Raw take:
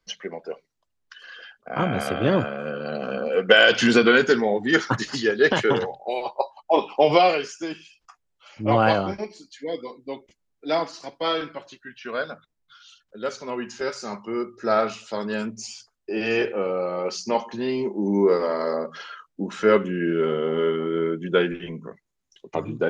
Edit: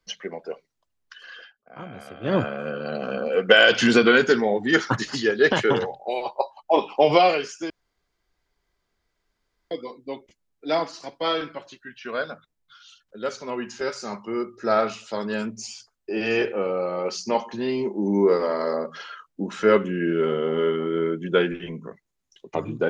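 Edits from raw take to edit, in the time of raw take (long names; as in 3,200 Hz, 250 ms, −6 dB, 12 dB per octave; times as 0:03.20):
0:01.39–0:02.36: duck −15 dB, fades 0.14 s
0:07.70–0:09.71: fill with room tone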